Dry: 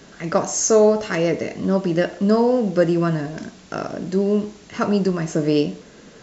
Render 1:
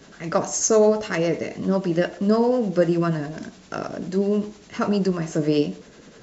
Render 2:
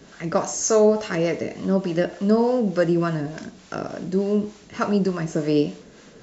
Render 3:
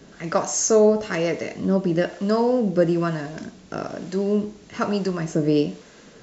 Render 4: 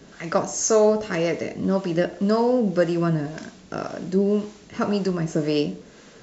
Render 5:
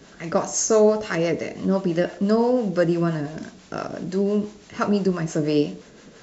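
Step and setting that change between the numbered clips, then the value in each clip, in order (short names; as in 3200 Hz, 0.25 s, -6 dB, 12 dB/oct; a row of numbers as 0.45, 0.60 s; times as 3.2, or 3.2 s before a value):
harmonic tremolo, rate: 10, 3.4, 1.1, 1.9, 5.9 Hz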